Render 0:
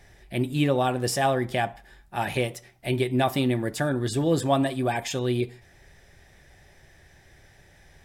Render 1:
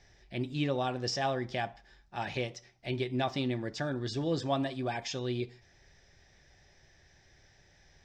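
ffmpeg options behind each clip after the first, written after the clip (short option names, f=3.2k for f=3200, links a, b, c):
-filter_complex "[0:a]acrossover=split=7800[a][b];[b]acompressor=threshold=-53dB:ratio=4:attack=1:release=60[c];[a][c]amix=inputs=2:normalize=0,highshelf=f=7.9k:t=q:w=3:g=-14,volume=-8.5dB"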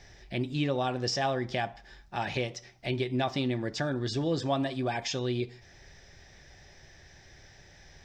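-af "acompressor=threshold=-44dB:ratio=1.5,volume=8dB"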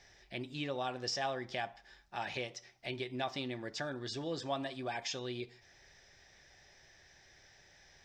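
-af "lowshelf=f=340:g=-10,volume=-5dB"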